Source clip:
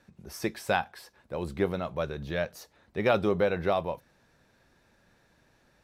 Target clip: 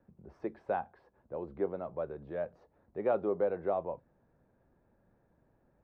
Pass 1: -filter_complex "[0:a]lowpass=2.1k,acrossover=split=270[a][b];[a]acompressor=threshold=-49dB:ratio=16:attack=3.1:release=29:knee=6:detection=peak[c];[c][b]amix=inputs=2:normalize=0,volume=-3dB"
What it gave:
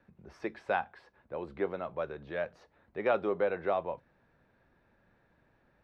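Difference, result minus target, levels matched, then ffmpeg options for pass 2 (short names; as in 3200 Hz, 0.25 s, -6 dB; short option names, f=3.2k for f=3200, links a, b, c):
2000 Hz band +9.5 dB
-filter_complex "[0:a]lowpass=820,acrossover=split=270[a][b];[a]acompressor=threshold=-49dB:ratio=16:attack=3.1:release=29:knee=6:detection=peak[c];[c][b]amix=inputs=2:normalize=0,volume=-3dB"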